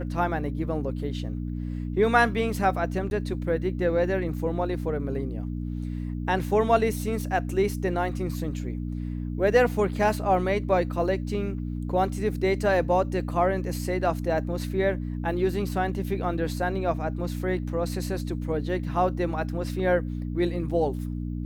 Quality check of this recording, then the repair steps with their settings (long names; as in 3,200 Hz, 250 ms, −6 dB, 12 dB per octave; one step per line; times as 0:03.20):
mains hum 60 Hz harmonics 5 −31 dBFS
0:03.10–0:03.11: drop-out 11 ms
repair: hum removal 60 Hz, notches 5
repair the gap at 0:03.10, 11 ms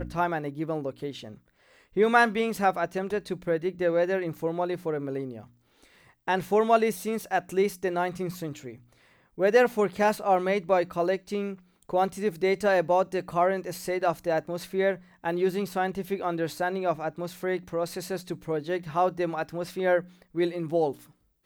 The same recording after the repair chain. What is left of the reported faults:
none of them is left